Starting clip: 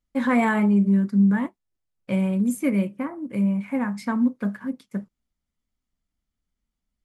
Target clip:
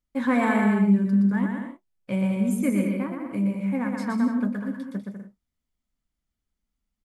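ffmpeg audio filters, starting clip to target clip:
-af "aecho=1:1:120|198|248.7|281.7|303.1:0.631|0.398|0.251|0.158|0.1,volume=-3dB"

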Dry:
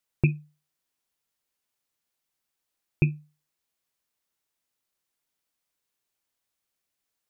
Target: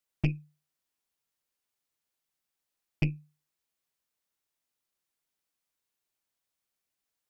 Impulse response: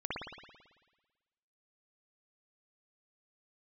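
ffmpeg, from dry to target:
-af "aeval=exprs='(tanh(8.91*val(0)+0.65)-tanh(0.65))/8.91':c=same"

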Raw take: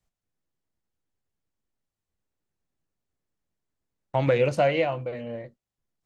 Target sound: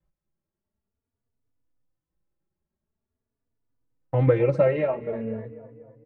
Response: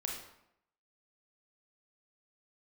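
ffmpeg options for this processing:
-filter_complex "[0:a]firequalizer=gain_entry='entry(240,0);entry(3500,-16);entry(8400,-23)':delay=0.05:min_phase=1,asplit=2[a][b];[b]adelay=245,lowpass=f=2.4k:p=1,volume=-15.5dB,asplit=2[c][d];[d]adelay=245,lowpass=f=2.4k:p=1,volume=0.54,asplit=2[e][f];[f]adelay=245,lowpass=f=2.4k:p=1,volume=0.54,asplit=2[g][h];[h]adelay=245,lowpass=f=2.4k:p=1,volume=0.54,asplit=2[i][j];[j]adelay=245,lowpass=f=2.4k:p=1,volume=0.54[k];[a][c][e][g][i][k]amix=inputs=6:normalize=0,asetrate=41625,aresample=44100,atempo=1.05946,bandreject=f=740:w=12,asplit=2[l][m];[m]adelay=3.4,afreqshift=0.46[n];[l][n]amix=inputs=2:normalize=1,volume=7dB"

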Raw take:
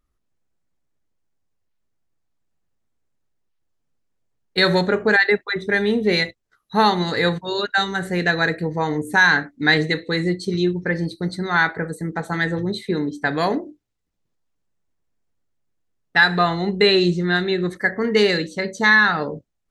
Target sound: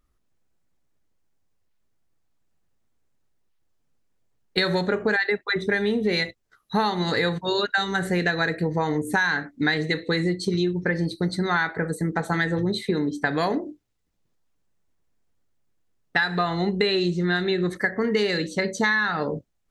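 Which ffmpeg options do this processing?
-af "acompressor=threshold=-23dB:ratio=6,volume=3dB"

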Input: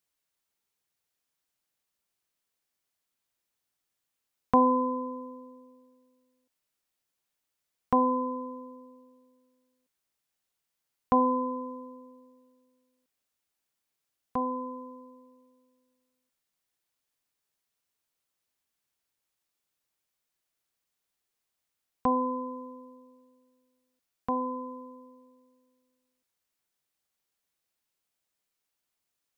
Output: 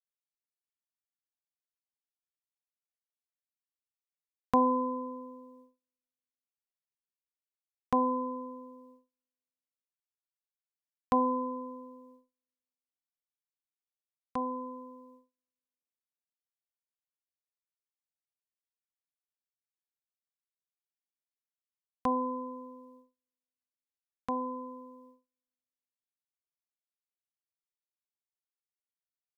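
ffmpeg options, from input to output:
-af "agate=range=-35dB:threshold=-53dB:ratio=16:detection=peak,volume=-3.5dB"

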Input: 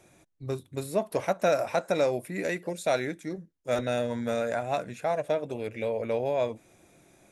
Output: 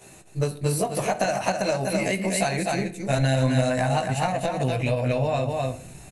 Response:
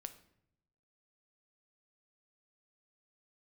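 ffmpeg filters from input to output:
-filter_complex "[0:a]aemphasis=mode=production:type=cd,aecho=1:1:303:0.447,acompressor=threshold=-30dB:ratio=6,asubboost=boost=6:cutoff=130,asplit=2[a][b];[1:a]atrim=start_sample=2205,adelay=17[c];[b][c]afir=irnorm=-1:irlink=0,volume=9.5dB[d];[a][d]amix=inputs=2:normalize=0,atempo=1.1,aresample=22050,aresample=44100,asetrate=48000,aresample=44100,volume=4dB"

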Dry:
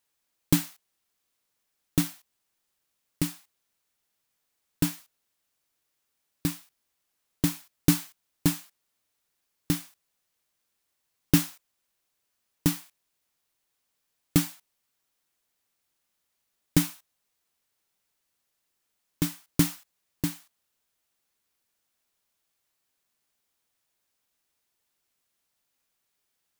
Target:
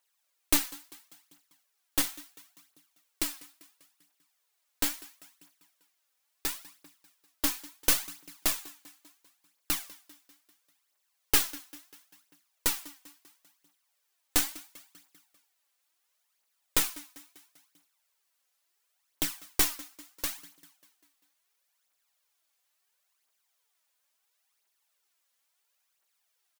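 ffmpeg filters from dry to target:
-filter_complex "[0:a]highpass=610,asplit=2[a][b];[b]aecho=0:1:197|394|591|788|985:0.112|0.0617|0.0339|0.0187|0.0103[c];[a][c]amix=inputs=2:normalize=0,aphaser=in_gain=1:out_gain=1:delay=4.1:decay=0.55:speed=0.73:type=triangular,aeval=exprs='0.355*(cos(1*acos(clip(val(0)/0.355,-1,1)))-cos(1*PI/2))+0.0891*(cos(6*acos(clip(val(0)/0.355,-1,1)))-cos(6*PI/2))':c=same"

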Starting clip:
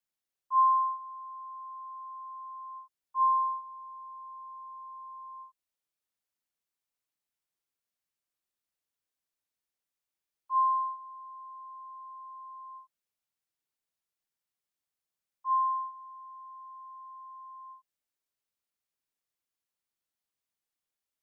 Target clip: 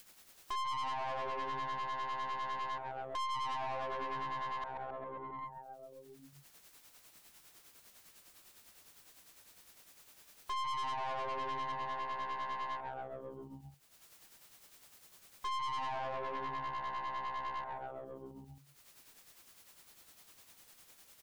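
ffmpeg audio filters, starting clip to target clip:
-filter_complex "[0:a]asettb=1/sr,asplit=3[a][b][c];[a]atrim=end=4.684[d];[b]atrim=start=4.68:end=5.39,asetpts=PTS-STARTPTS,afade=t=in:d=0.004:c=qsin,afade=t=out:st=0.706:d=0.004:c=qsin,asplit=3[e][f][g];[e]bandpass=f=730:t=q:w=8,volume=0dB[h];[f]bandpass=f=1.09k:t=q:w=8,volume=-6dB[i];[g]bandpass=f=2.44k:t=q:w=8,volume=-9dB[j];[h][i][j]amix=inputs=3:normalize=0[k];[c]atrim=start=5.386[l];[d][k]acrossfade=d=0.004:c1=hsin:c2=qsin[m];[m][l]acrossfade=d=0.004:c1=qsin:c2=hsin,afwtdn=0.0126,asettb=1/sr,asplit=3[n][o][p];[n]atrim=end=10.704[q];[o]atrim=start=10.7:end=11.72,asetpts=PTS-STARTPTS,afade=t=in:d=0.004:c=qsin,afade=t=out:st=1.016:d=0.004:c=qsin,aecho=1:1:5.7:0.81,atrim=end_sample=44982[r];[p]atrim=start=11.716[s];[q][r]acrossfade=d=0.004:c1=hsin:c2=qsin[t];[t][s]acrossfade=d=0.004:c1=qsin:c2=hsin,asplit=2[u][v];[v]alimiter=level_in=2.5dB:limit=-24dB:level=0:latency=1,volume=-2.5dB,volume=3dB[w];[u][w]amix=inputs=2:normalize=0,tremolo=f=9.9:d=0.65,asplit=8[x][y][z][aa][ab][ac][ad][ae];[y]adelay=134,afreqshift=-130,volume=-10dB[af];[z]adelay=268,afreqshift=-260,volume=-14.6dB[ag];[aa]adelay=402,afreqshift=-390,volume=-19.2dB[ah];[ab]adelay=536,afreqshift=-520,volume=-23.7dB[ai];[ac]adelay=670,afreqshift=-650,volume=-28.3dB[aj];[ad]adelay=804,afreqshift=-780,volume=-32.9dB[ak];[ae]adelay=938,afreqshift=-910,volume=-37.5dB[al];[x][af][ag][ah][ai][aj][ak][al]amix=inputs=8:normalize=0,acompressor=threshold=-32dB:ratio=3,adynamicequalizer=threshold=0.00398:dfrequency=930:dqfactor=4.4:tfrequency=930:tqfactor=4.4:attack=5:release=100:ratio=0.375:range=2.5:mode=cutabove:tftype=bell,acompressor=mode=upward:threshold=-31dB:ratio=2.5,aeval=exprs='(tanh(89.1*val(0)+0.5)-tanh(0.5))/89.1':c=same,volume=3.5dB"

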